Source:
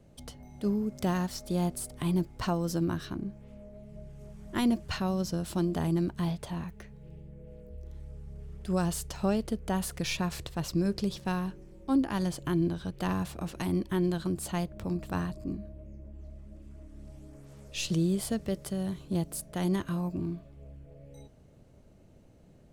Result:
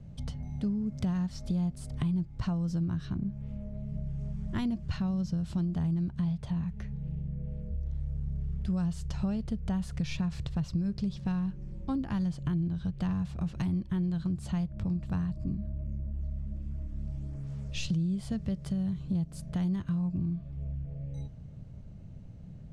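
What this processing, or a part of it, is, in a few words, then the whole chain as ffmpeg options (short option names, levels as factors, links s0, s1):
jukebox: -af "lowpass=6300,lowshelf=f=230:t=q:w=1.5:g=11.5,acompressor=threshold=0.0316:ratio=4"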